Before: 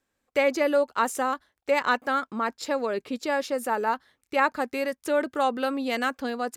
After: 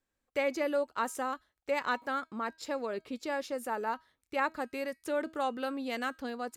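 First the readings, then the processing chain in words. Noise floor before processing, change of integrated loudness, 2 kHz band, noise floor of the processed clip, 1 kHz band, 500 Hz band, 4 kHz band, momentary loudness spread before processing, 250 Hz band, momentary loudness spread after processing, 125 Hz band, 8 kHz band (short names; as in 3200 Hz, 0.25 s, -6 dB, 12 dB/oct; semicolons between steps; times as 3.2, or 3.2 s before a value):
-80 dBFS, -8.0 dB, -8.0 dB, -85 dBFS, -8.0 dB, -8.0 dB, -8.0 dB, 6 LU, -7.5 dB, 6 LU, n/a, -8.0 dB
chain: low shelf 69 Hz +10 dB; resonator 320 Hz, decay 0.33 s, harmonics all, mix 40%; gain -4 dB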